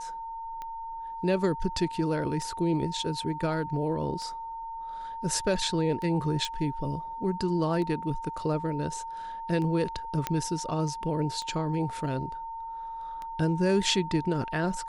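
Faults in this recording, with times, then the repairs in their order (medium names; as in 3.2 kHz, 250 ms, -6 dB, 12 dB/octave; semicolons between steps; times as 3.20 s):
tick 33 1/3 rpm -25 dBFS
whine 910 Hz -35 dBFS
6.45 s: pop
10.27 s: pop -12 dBFS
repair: de-click; band-stop 910 Hz, Q 30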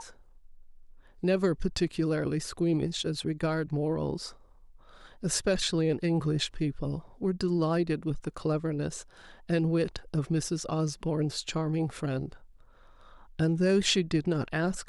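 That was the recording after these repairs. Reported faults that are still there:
nothing left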